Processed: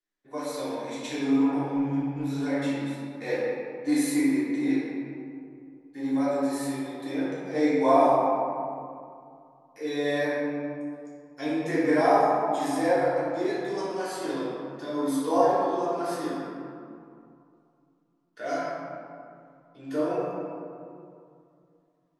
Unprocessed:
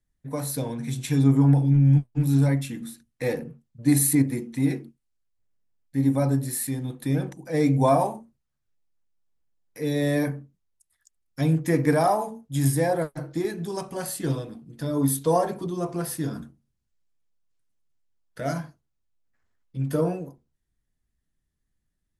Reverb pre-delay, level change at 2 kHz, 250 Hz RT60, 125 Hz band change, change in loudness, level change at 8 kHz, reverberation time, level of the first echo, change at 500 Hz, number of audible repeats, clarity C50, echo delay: 3 ms, +2.5 dB, 2.7 s, -17.5 dB, -2.5 dB, -10.5 dB, 2.4 s, none, +1.5 dB, none, -3.0 dB, none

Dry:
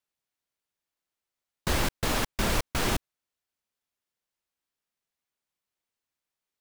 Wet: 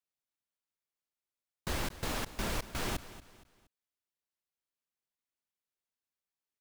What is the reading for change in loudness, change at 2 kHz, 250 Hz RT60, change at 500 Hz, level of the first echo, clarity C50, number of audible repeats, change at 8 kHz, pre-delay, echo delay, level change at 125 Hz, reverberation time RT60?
-8.5 dB, -8.5 dB, none, -8.5 dB, -15.5 dB, none, 3, -8.5 dB, none, 0.234 s, -8.5 dB, none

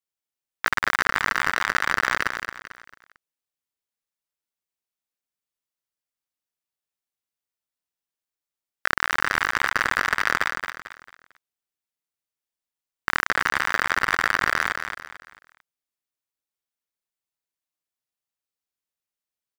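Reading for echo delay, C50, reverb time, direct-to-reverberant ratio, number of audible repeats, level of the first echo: 0.223 s, none, none, none, 4, -7.0 dB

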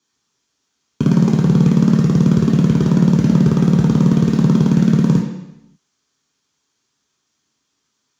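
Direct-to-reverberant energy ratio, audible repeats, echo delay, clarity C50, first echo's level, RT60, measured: -2.0 dB, none, none, 3.5 dB, none, 0.85 s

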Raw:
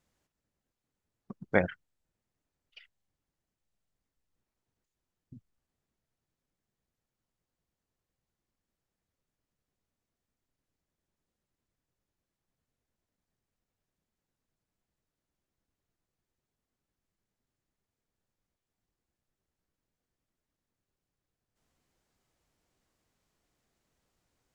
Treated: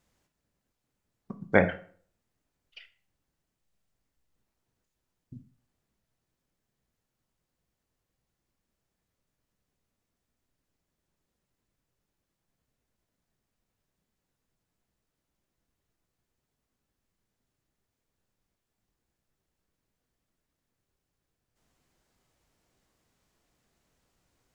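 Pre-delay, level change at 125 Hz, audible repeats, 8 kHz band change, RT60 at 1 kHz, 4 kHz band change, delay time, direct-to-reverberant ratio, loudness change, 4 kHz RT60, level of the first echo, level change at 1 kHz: 11 ms, +5.0 dB, none, n/a, 0.50 s, +4.5 dB, none, 8.0 dB, +4.5 dB, 0.35 s, none, +5.0 dB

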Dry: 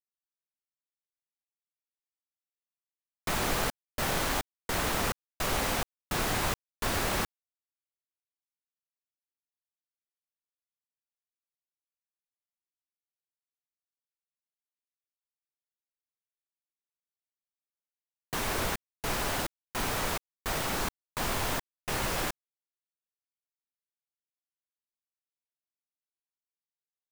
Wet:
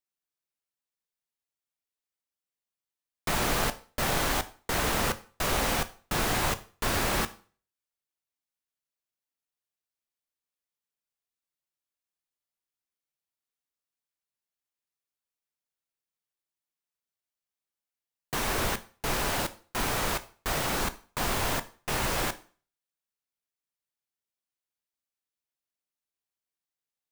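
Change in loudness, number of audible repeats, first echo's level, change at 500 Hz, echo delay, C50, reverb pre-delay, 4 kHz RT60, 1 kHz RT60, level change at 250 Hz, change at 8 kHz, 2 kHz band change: +2.5 dB, none, none, +2.5 dB, none, 18.0 dB, 6 ms, 0.40 s, 0.40 s, +2.5 dB, +2.5 dB, +2.5 dB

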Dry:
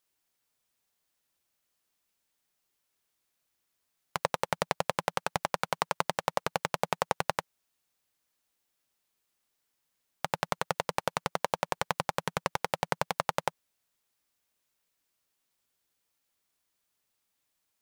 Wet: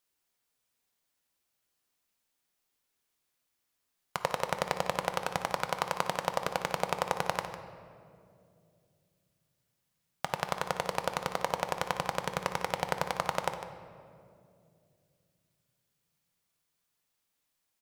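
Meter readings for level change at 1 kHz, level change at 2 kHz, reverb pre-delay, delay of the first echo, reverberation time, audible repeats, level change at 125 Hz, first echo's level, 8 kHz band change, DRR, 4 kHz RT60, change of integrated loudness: -0.5 dB, -0.5 dB, 4 ms, 0.152 s, 2.4 s, 1, -1.0 dB, -12.5 dB, -1.0 dB, 6.5 dB, 1.4 s, -0.5 dB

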